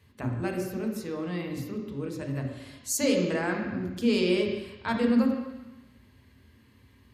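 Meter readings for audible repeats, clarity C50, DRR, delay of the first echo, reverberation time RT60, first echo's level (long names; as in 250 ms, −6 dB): no echo audible, 4.0 dB, 1.0 dB, no echo audible, 1.0 s, no echo audible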